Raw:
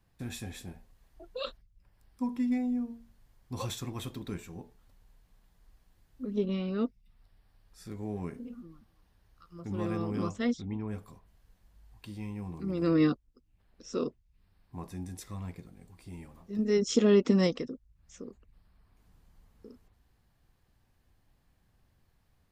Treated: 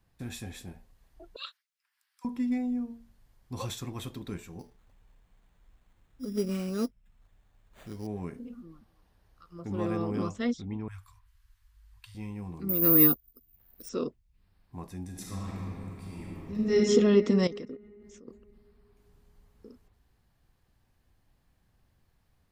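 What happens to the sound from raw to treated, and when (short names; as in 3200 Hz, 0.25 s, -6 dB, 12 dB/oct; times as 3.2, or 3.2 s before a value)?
1.36–2.25 HPF 1300 Hz 24 dB/oct
4.59–8.07 sample-rate reducer 5300 Hz
8.67–10.23 bell 590 Hz +4 dB 2.2 oct
10.88–12.15 inverse Chebyshev band-stop 210–490 Hz, stop band 60 dB
12.69–13.89 careless resampling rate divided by 3×, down none, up zero stuff
15.08–16.77 reverb throw, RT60 2.9 s, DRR -4.5 dB
17.47–18.28 level quantiser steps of 13 dB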